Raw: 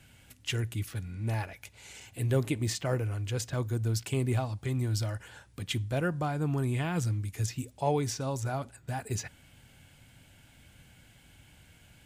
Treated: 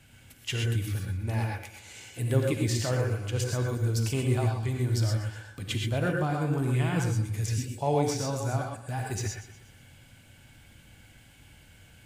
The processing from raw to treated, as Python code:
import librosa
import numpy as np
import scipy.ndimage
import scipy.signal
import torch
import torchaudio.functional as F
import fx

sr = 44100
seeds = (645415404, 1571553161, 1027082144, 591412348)

y = fx.echo_feedback(x, sr, ms=121, feedback_pct=47, wet_db=-14.5)
y = fx.rev_gated(y, sr, seeds[0], gate_ms=150, shape='rising', drr_db=1.0)